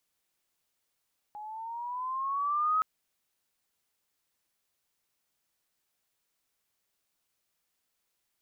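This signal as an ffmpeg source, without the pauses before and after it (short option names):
-f lavfi -i "aevalsrc='pow(10,(-23+16.5*(t/1.47-1))/20)*sin(2*PI*831*1.47/(7.5*log(2)/12)*(exp(7.5*log(2)/12*t/1.47)-1))':d=1.47:s=44100"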